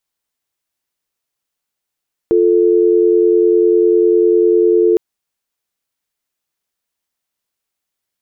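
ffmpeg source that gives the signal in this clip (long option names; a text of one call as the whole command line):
ffmpeg -f lavfi -i "aevalsrc='0.282*(sin(2*PI*350*t)+sin(2*PI*440*t))':duration=2.66:sample_rate=44100" out.wav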